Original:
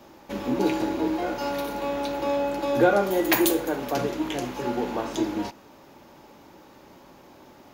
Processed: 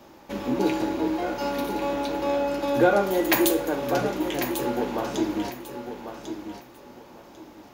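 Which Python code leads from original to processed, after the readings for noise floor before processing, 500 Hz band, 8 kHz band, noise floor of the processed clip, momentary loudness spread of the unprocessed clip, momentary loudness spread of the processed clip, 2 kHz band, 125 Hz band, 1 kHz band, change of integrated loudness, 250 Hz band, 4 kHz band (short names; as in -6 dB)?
-51 dBFS, +0.5 dB, +0.5 dB, -49 dBFS, 9 LU, 16 LU, +0.5 dB, +0.5 dB, +0.5 dB, +0.5 dB, +0.5 dB, +0.5 dB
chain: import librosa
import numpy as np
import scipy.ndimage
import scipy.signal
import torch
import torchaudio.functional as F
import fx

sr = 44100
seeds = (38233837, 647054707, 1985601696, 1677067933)

y = fx.echo_feedback(x, sr, ms=1096, feedback_pct=23, wet_db=-9.0)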